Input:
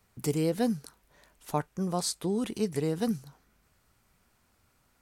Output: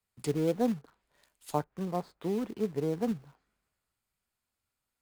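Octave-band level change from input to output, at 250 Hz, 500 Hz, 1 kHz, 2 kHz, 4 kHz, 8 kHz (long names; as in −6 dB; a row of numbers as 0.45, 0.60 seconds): −2.0, −0.5, −1.0, −4.5, −10.5, −12.0 decibels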